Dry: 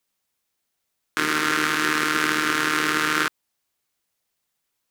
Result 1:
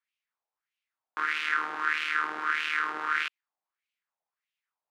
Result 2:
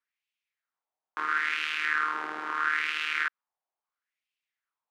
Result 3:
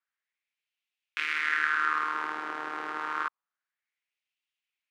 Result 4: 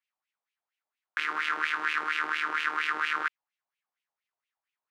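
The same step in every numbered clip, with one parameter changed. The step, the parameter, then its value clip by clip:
LFO wah, speed: 1.6, 0.75, 0.28, 4.3 Hertz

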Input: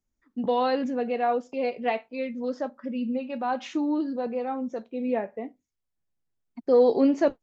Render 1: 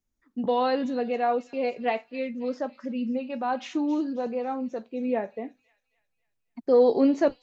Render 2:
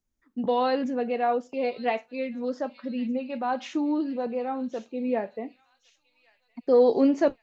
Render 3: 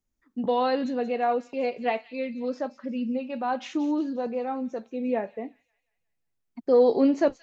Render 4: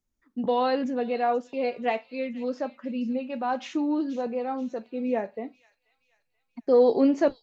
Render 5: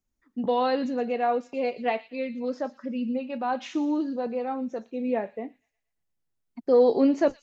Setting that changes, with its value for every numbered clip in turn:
delay with a high-pass on its return, delay time: 270, 1,112, 178, 481, 117 milliseconds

